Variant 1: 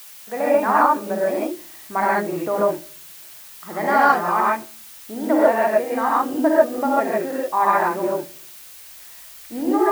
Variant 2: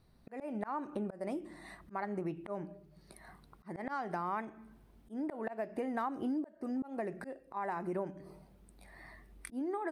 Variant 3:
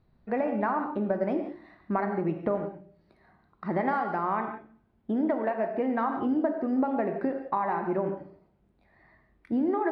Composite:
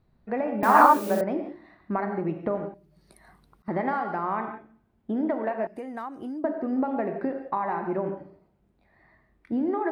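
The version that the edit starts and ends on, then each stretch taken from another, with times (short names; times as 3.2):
3
0.63–1.21 from 1
2.74–3.68 from 2
5.67–6.44 from 2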